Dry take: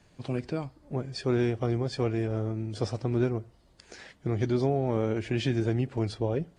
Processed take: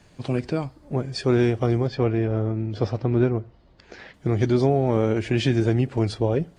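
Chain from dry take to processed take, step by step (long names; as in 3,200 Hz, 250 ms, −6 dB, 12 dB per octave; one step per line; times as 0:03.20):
0:01.87–0:04.14: high-frequency loss of the air 190 metres
level +6.5 dB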